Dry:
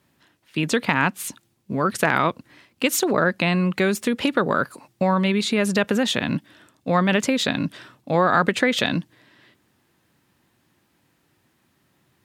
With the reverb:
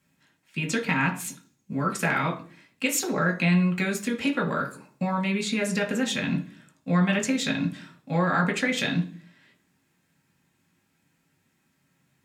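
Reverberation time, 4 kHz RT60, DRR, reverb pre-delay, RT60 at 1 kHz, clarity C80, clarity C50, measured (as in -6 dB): 0.45 s, 0.50 s, 0.5 dB, 3 ms, 0.35 s, 17.0 dB, 12.5 dB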